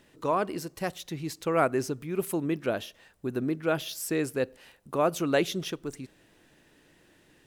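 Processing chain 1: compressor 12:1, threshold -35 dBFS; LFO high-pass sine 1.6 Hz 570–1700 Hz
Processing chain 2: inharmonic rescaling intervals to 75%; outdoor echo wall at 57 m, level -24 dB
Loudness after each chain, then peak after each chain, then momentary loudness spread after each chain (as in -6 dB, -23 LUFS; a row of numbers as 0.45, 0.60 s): -42.0, -31.5 LUFS; -21.0, -13.5 dBFS; 21, 11 LU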